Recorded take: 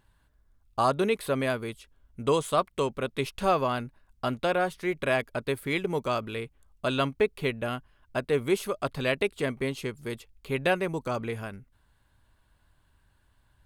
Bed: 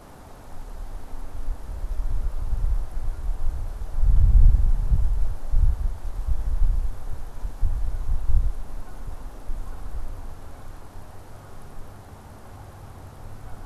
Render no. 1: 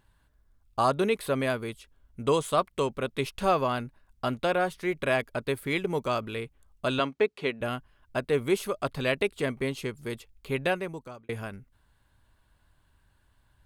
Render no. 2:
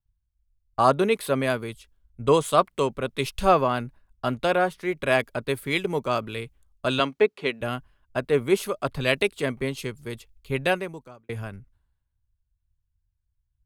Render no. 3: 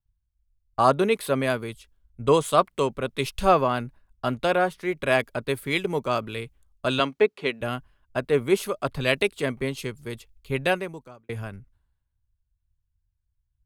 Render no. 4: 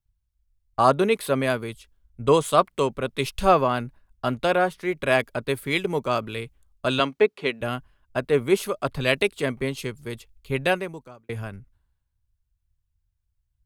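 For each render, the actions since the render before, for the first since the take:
6.99–7.61 BPF 220–6500 Hz; 10.53–11.29 fade out
in parallel at +2 dB: compressor, threshold -34 dBFS, peak gain reduction 14.5 dB; on the sum: three-band expander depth 100%
nothing audible
gain +1 dB

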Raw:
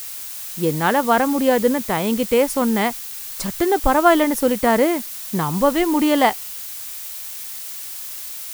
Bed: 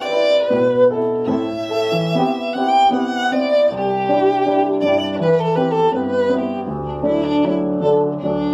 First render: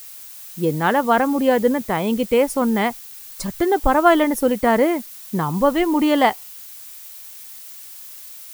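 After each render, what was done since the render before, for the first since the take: denoiser 8 dB, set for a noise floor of -32 dBFS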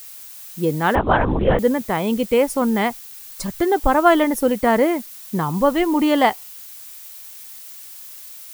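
0.95–1.59 LPC vocoder at 8 kHz whisper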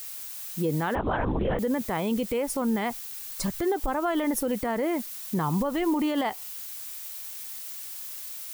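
compressor 3:1, threshold -18 dBFS, peak gain reduction 8 dB; limiter -18.5 dBFS, peak gain reduction 11 dB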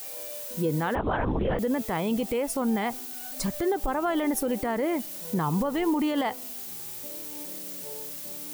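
add bed -29 dB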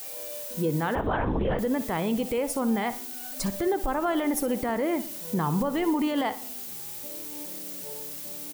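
feedback echo 61 ms, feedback 43%, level -14 dB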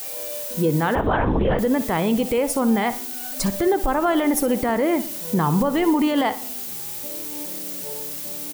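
gain +6.5 dB

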